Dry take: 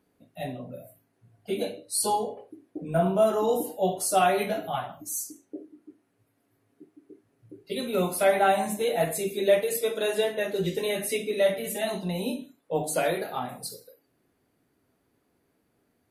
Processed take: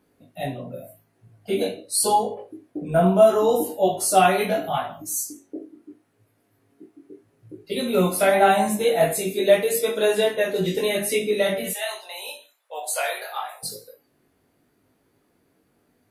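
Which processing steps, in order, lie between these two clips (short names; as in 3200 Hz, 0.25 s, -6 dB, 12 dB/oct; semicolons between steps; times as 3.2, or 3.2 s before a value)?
11.71–13.63 Bessel high-pass 950 Hz, order 6; chorus 0.8 Hz, delay 19 ms, depth 2.7 ms; gain +8.5 dB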